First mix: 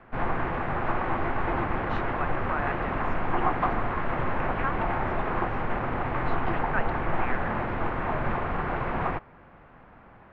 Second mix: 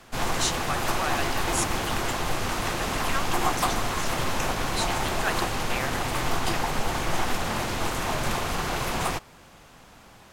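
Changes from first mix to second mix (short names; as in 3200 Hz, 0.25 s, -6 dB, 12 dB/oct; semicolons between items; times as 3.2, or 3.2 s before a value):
speech: entry -1.50 s; master: remove LPF 2000 Hz 24 dB/oct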